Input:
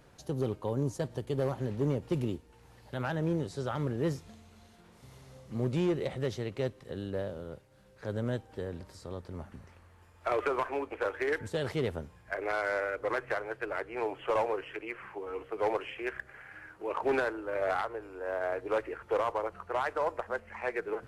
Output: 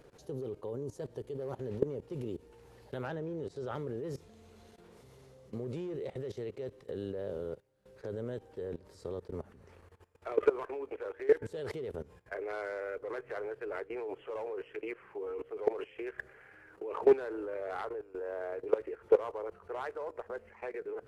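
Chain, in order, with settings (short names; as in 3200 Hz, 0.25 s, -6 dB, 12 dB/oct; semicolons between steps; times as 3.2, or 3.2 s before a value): bell 430 Hz +11 dB 0.65 oct; level quantiser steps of 19 dB; 3.07–3.74 high shelf 9500 Hz -11 dB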